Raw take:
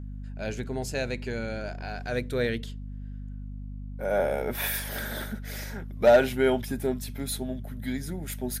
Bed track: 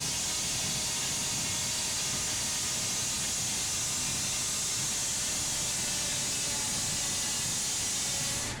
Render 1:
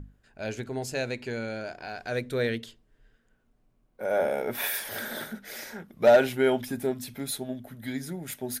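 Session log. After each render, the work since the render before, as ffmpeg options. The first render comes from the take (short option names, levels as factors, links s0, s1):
-af "bandreject=f=50:t=h:w=6,bandreject=f=100:t=h:w=6,bandreject=f=150:t=h:w=6,bandreject=f=200:t=h:w=6,bandreject=f=250:t=h:w=6"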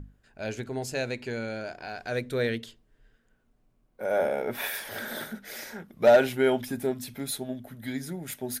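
-filter_complex "[0:a]asettb=1/sr,asplit=3[s0][s1][s2];[s0]atrim=end=4.284[s3];[s1]atrim=start=4.28:end=5.08,asetpts=PTS-STARTPTS,afade=t=in:d=0.004:c=qsin,afade=t=out:st=0.796:d=0.004:c=qsin,highshelf=f=5400:g=-6[s4];[s2]atrim=start=5.076[s5];[s3][s4]acrossfade=d=0.004:c1=hsin:c2=qsin[s6];[s6][s5]acrossfade=d=0.004:c1=qsin:c2=hsin"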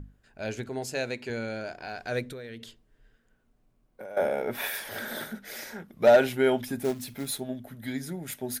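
-filter_complex "[0:a]asettb=1/sr,asplit=3[s0][s1][s2];[s0]atrim=end=0.694[s3];[s1]atrim=start=0.69:end=1.3,asetpts=PTS-STARTPTS,afade=t=in:d=0.004:c=qsin,afade=t=out:st=0.606:d=0.004:c=qsin,highpass=f=160:p=1[s4];[s2]atrim=start=1.296[s5];[s3][s4]acrossfade=d=0.004:c1=hsin:c2=qsin[s6];[s6][s5]acrossfade=d=0.004:c1=qsin:c2=hsin,asettb=1/sr,asplit=3[s7][s8][s9];[s7]atrim=end=2.284[s10];[s8]atrim=start=2.28:end=4.17,asetpts=PTS-STARTPTS,afade=t=in:d=0.004:c=qsin,afade=t=out:st=1.886:d=0.004:c=qsin,acompressor=threshold=0.0141:ratio=10:attack=3.2:release=140:knee=1:detection=peak[s11];[s9]atrim=start=4.166[s12];[s10][s11]acrossfade=d=0.004:c1=hsin:c2=qsin[s13];[s13][s12]acrossfade=d=0.004:c1=qsin:c2=hsin,asplit=3[s14][s15][s16];[s14]afade=t=out:st=6.83:d=0.02[s17];[s15]acrusher=bits=4:mode=log:mix=0:aa=0.000001,afade=t=in:st=6.83:d=0.02,afade=t=out:st=7.39:d=0.02[s18];[s16]afade=t=in:st=7.39:d=0.02[s19];[s17][s18][s19]amix=inputs=3:normalize=0"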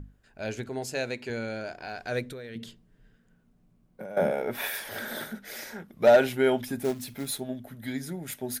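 -filter_complex "[0:a]asettb=1/sr,asplit=3[s0][s1][s2];[s0]atrim=end=2.554[s3];[s1]atrim=start=2.55:end=4.31,asetpts=PTS-STARTPTS,afade=t=in:d=0.004:c=qsin,afade=t=out:st=1.756:d=0.004:c=qsin,equalizer=f=170:t=o:w=0.9:g=14.5[s4];[s2]atrim=start=4.306[s5];[s3][s4]acrossfade=d=0.004:c1=hsin:c2=qsin[s6];[s6][s5]acrossfade=d=0.004:c1=qsin:c2=hsin"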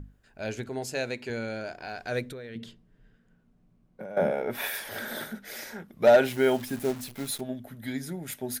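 -filter_complex "[0:a]asettb=1/sr,asplit=3[s0][s1][s2];[s0]atrim=end=2.324[s3];[s1]atrim=start=2.32:end=4.5,asetpts=PTS-STARTPTS,afade=t=in:d=0.004:c=qsin,afade=t=out:st=2.176:d=0.004:c=qsin,highshelf=f=6800:g=-10[s4];[s2]atrim=start=4.496[s5];[s3][s4]acrossfade=d=0.004:c1=hsin:c2=qsin[s6];[s6][s5]acrossfade=d=0.004:c1=qsin:c2=hsin,asettb=1/sr,asplit=3[s7][s8][s9];[s7]atrim=end=6.254[s10];[s8]atrim=start=6.25:end=7.41,asetpts=PTS-STARTPTS,afade=t=in:d=0.004:c=qsin,afade=t=out:st=1.156:d=0.004:c=qsin,acrusher=bits=8:dc=4:mix=0:aa=0.000001[s11];[s9]atrim=start=7.406[s12];[s10][s11]acrossfade=d=0.004:c1=hsin:c2=qsin[s13];[s13][s12]acrossfade=d=0.004:c1=qsin:c2=hsin"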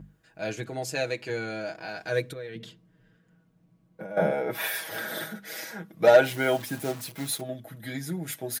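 -af "highpass=82,aecho=1:1:6.2:0.82"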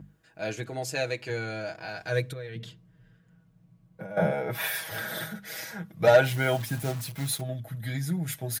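-af "highpass=62,asubboost=boost=10:cutoff=95"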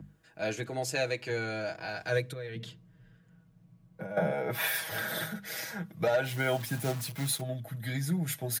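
-filter_complex "[0:a]acrossover=split=110|620|7000[s0][s1][s2][s3];[s0]acompressor=threshold=0.00224:ratio=6[s4];[s4][s1][s2][s3]amix=inputs=4:normalize=0,alimiter=limit=0.119:level=0:latency=1:release=318"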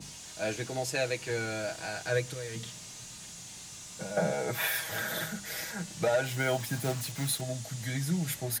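-filter_complex "[1:a]volume=0.188[s0];[0:a][s0]amix=inputs=2:normalize=0"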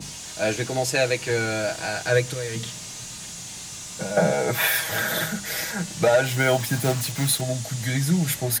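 -af "volume=2.82"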